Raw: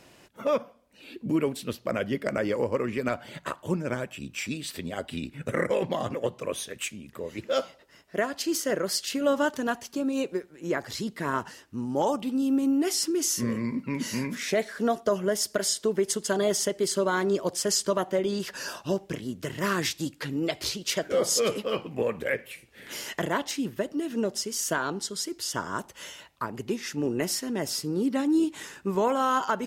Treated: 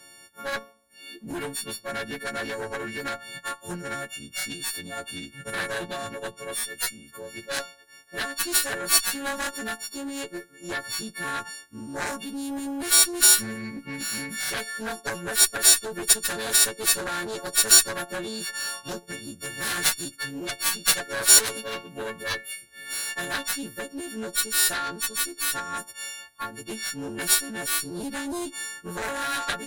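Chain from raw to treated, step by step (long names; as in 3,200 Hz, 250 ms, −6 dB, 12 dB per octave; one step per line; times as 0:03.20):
every partial snapped to a pitch grid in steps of 4 semitones
harmonic generator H 4 −13 dB, 5 −21 dB, 6 −14 dB, 7 −10 dB, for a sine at −3 dBFS
thirty-one-band graphic EQ 1,600 Hz +10 dB, 4,000 Hz +5 dB, 10,000 Hz +8 dB
level −2.5 dB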